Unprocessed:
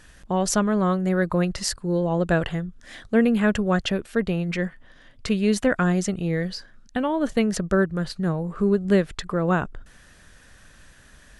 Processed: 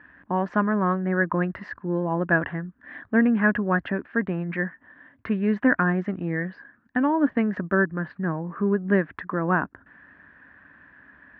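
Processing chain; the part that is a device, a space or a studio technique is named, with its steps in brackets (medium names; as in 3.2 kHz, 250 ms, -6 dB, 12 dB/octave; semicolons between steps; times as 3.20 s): bass cabinet (cabinet simulation 74–2100 Hz, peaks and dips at 80 Hz -8 dB, 130 Hz -7 dB, 280 Hz +9 dB, 480 Hz -5 dB, 1 kHz +7 dB, 1.7 kHz +10 dB); trim -2.5 dB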